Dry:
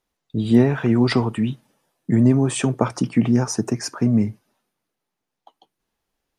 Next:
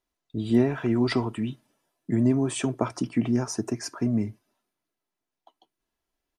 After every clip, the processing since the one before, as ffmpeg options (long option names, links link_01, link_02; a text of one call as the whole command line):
ffmpeg -i in.wav -af "aecho=1:1:3:0.37,volume=-6.5dB" out.wav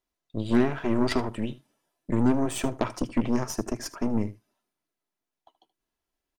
ffmpeg -i in.wav -af "aeval=exprs='0.355*(cos(1*acos(clip(val(0)/0.355,-1,1)))-cos(1*PI/2))+0.0501*(cos(8*acos(clip(val(0)/0.355,-1,1)))-cos(8*PI/2))':channel_layout=same,aecho=1:1:77:0.133,volume=-2dB" out.wav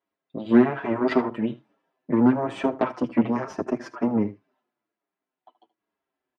ffmpeg -i in.wav -filter_complex "[0:a]highpass=190,lowpass=2100,asplit=2[link_01][link_02];[link_02]adelay=6.8,afreqshift=-1.2[link_03];[link_01][link_03]amix=inputs=2:normalize=1,volume=8dB" out.wav